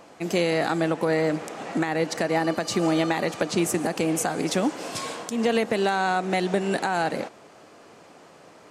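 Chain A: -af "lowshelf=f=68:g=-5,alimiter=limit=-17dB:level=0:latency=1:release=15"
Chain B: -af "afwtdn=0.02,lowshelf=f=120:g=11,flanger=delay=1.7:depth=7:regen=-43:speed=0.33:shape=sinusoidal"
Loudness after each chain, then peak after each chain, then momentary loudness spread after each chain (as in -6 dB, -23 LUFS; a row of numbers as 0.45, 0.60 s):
-27.5, -28.5 LUFS; -17.0, -13.5 dBFS; 5, 7 LU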